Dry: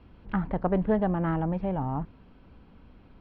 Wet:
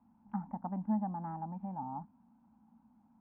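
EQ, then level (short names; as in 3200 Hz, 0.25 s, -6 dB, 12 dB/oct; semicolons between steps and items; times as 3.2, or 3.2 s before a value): double band-pass 440 Hz, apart 1.9 oct; air absorption 270 m; -1.5 dB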